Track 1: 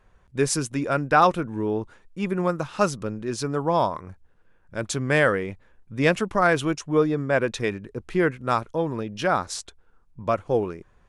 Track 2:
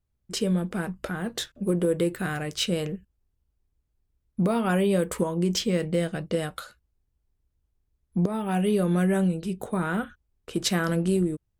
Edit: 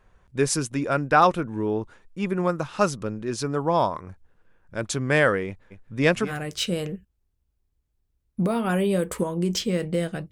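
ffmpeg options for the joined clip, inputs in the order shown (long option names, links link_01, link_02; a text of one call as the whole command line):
ffmpeg -i cue0.wav -i cue1.wav -filter_complex "[0:a]asplit=3[link_01][link_02][link_03];[link_01]afade=type=out:start_time=5.7:duration=0.02[link_04];[link_02]aecho=1:1:233:0.299,afade=type=in:start_time=5.7:duration=0.02,afade=type=out:start_time=6.33:duration=0.02[link_05];[link_03]afade=type=in:start_time=6.33:duration=0.02[link_06];[link_04][link_05][link_06]amix=inputs=3:normalize=0,apad=whole_dur=10.31,atrim=end=10.31,atrim=end=6.33,asetpts=PTS-STARTPTS[link_07];[1:a]atrim=start=2.25:end=6.31,asetpts=PTS-STARTPTS[link_08];[link_07][link_08]acrossfade=duration=0.08:curve1=tri:curve2=tri" out.wav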